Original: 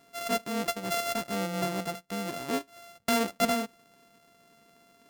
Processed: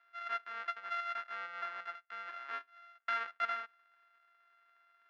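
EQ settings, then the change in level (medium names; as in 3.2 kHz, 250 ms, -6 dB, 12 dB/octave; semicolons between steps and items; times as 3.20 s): ladder band-pass 1.7 kHz, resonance 55%; distance through air 160 m; +5.5 dB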